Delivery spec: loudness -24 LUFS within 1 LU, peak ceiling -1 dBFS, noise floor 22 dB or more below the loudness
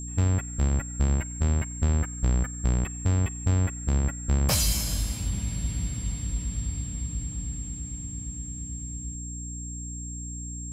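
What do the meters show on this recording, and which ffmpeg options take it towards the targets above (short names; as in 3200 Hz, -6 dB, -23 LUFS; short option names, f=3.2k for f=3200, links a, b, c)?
hum 60 Hz; harmonics up to 300 Hz; hum level -34 dBFS; steady tone 7500 Hz; tone level -38 dBFS; loudness -29.0 LUFS; peak -10.5 dBFS; loudness target -24.0 LUFS
-> -af "bandreject=f=60:t=h:w=4,bandreject=f=120:t=h:w=4,bandreject=f=180:t=h:w=4,bandreject=f=240:t=h:w=4,bandreject=f=300:t=h:w=4"
-af "bandreject=f=7.5k:w=30"
-af "volume=5dB"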